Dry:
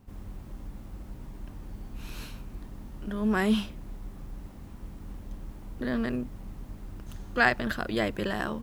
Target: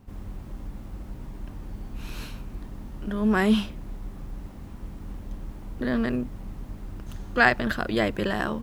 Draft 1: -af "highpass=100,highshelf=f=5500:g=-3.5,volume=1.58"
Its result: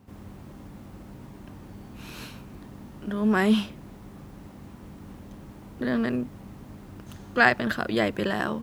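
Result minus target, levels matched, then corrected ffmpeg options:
125 Hz band -2.5 dB
-af "highshelf=f=5500:g=-3.5,volume=1.58"

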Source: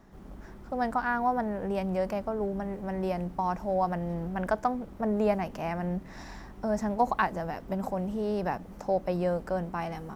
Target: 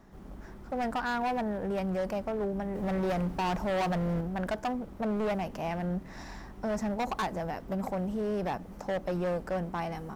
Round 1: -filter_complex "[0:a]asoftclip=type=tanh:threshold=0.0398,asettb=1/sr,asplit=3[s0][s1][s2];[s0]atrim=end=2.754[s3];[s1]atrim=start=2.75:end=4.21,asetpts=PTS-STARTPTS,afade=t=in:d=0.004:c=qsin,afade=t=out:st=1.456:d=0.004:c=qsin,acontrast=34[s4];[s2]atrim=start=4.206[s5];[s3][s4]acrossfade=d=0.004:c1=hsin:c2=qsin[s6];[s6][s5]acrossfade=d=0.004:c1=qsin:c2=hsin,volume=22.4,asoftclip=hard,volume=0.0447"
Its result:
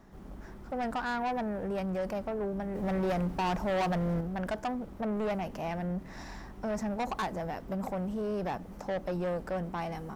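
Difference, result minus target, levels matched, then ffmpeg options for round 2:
saturation: distortion +10 dB
-filter_complex "[0:a]asoftclip=type=tanh:threshold=0.119,asettb=1/sr,asplit=3[s0][s1][s2];[s0]atrim=end=2.754[s3];[s1]atrim=start=2.75:end=4.21,asetpts=PTS-STARTPTS,afade=t=in:d=0.004:c=qsin,afade=t=out:st=1.456:d=0.004:c=qsin,acontrast=34[s4];[s2]atrim=start=4.206[s5];[s3][s4]acrossfade=d=0.004:c1=hsin:c2=qsin[s6];[s6][s5]acrossfade=d=0.004:c1=qsin:c2=hsin,volume=22.4,asoftclip=hard,volume=0.0447"

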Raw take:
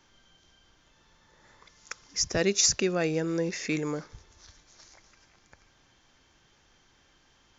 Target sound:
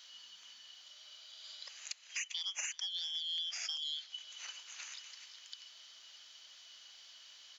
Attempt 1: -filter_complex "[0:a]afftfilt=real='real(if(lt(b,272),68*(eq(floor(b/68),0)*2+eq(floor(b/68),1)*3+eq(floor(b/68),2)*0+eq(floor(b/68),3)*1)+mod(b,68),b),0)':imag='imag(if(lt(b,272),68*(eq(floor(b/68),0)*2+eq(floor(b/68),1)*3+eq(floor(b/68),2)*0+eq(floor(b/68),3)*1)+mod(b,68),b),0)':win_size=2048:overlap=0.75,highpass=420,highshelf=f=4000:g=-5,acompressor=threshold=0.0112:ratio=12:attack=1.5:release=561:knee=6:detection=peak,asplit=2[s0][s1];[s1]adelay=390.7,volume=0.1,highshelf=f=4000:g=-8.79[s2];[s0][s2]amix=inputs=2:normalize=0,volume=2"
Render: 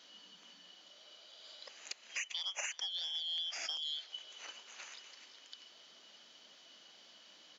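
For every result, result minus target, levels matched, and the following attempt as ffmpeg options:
500 Hz band +11.5 dB; 8 kHz band -3.5 dB
-filter_complex "[0:a]afftfilt=real='real(if(lt(b,272),68*(eq(floor(b/68),0)*2+eq(floor(b/68),1)*3+eq(floor(b/68),2)*0+eq(floor(b/68),3)*1)+mod(b,68),b),0)':imag='imag(if(lt(b,272),68*(eq(floor(b/68),0)*2+eq(floor(b/68),1)*3+eq(floor(b/68),2)*0+eq(floor(b/68),3)*1)+mod(b,68),b),0)':win_size=2048:overlap=0.75,highpass=1100,highshelf=f=4000:g=-5,acompressor=threshold=0.0112:ratio=12:attack=1.5:release=561:knee=6:detection=peak,asplit=2[s0][s1];[s1]adelay=390.7,volume=0.1,highshelf=f=4000:g=-8.79[s2];[s0][s2]amix=inputs=2:normalize=0,volume=2"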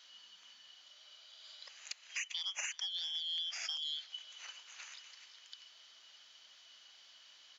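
8 kHz band -3.5 dB
-filter_complex "[0:a]afftfilt=real='real(if(lt(b,272),68*(eq(floor(b/68),0)*2+eq(floor(b/68),1)*3+eq(floor(b/68),2)*0+eq(floor(b/68),3)*1)+mod(b,68),b),0)':imag='imag(if(lt(b,272),68*(eq(floor(b/68),0)*2+eq(floor(b/68),1)*3+eq(floor(b/68),2)*0+eq(floor(b/68),3)*1)+mod(b,68),b),0)':win_size=2048:overlap=0.75,highpass=1100,highshelf=f=4000:g=3,acompressor=threshold=0.0112:ratio=12:attack=1.5:release=561:knee=6:detection=peak,asplit=2[s0][s1];[s1]adelay=390.7,volume=0.1,highshelf=f=4000:g=-8.79[s2];[s0][s2]amix=inputs=2:normalize=0,volume=2"

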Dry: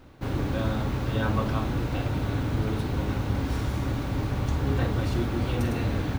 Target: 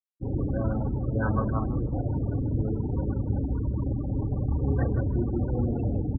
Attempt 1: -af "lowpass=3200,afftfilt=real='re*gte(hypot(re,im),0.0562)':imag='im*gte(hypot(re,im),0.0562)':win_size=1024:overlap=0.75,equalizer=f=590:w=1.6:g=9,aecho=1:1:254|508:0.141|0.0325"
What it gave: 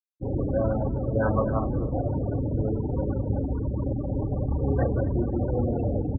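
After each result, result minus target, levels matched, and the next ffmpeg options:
echo 98 ms late; 500 Hz band +5.0 dB
-af "lowpass=3200,afftfilt=real='re*gte(hypot(re,im),0.0562)':imag='im*gte(hypot(re,im),0.0562)':win_size=1024:overlap=0.75,equalizer=f=590:w=1.6:g=9,aecho=1:1:156|312:0.141|0.0325"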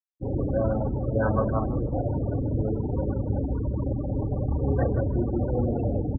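500 Hz band +5.0 dB
-af "lowpass=3200,afftfilt=real='re*gte(hypot(re,im),0.0562)':imag='im*gte(hypot(re,im),0.0562)':win_size=1024:overlap=0.75,aecho=1:1:156|312:0.141|0.0325"

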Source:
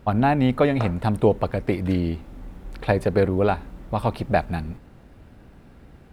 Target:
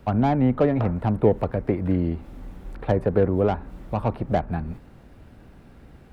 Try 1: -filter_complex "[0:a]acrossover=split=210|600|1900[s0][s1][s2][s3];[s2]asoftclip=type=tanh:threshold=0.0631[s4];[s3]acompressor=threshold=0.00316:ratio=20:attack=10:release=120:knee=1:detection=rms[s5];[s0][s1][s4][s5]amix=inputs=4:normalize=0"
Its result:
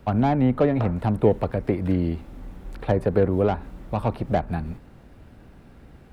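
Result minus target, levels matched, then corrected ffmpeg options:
compression: peak gain reduction -8.5 dB
-filter_complex "[0:a]acrossover=split=210|600|1900[s0][s1][s2][s3];[s2]asoftclip=type=tanh:threshold=0.0631[s4];[s3]acompressor=threshold=0.00112:ratio=20:attack=10:release=120:knee=1:detection=rms[s5];[s0][s1][s4][s5]amix=inputs=4:normalize=0"

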